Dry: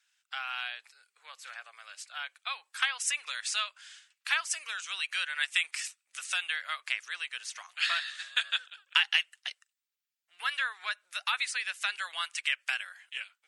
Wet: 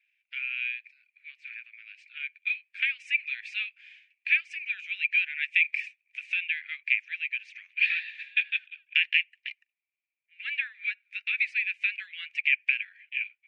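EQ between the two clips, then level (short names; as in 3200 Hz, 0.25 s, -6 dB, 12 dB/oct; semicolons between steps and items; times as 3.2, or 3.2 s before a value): elliptic high-pass 1800 Hz, stop band 70 dB; synth low-pass 2400 Hz, resonance Q 15; -8.0 dB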